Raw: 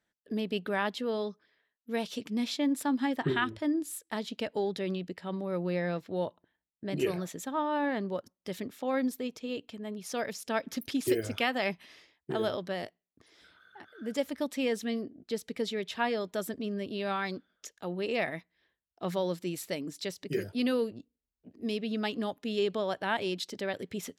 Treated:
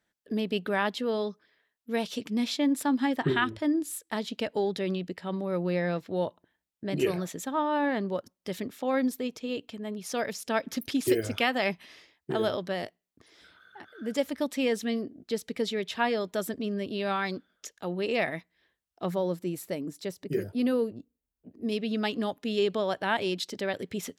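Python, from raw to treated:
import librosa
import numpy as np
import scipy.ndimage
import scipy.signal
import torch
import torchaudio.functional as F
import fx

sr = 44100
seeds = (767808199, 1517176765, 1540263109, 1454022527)

y = fx.peak_eq(x, sr, hz=3800.0, db=-9.0, octaves=2.7, at=(19.06, 21.72))
y = y * librosa.db_to_amplitude(3.0)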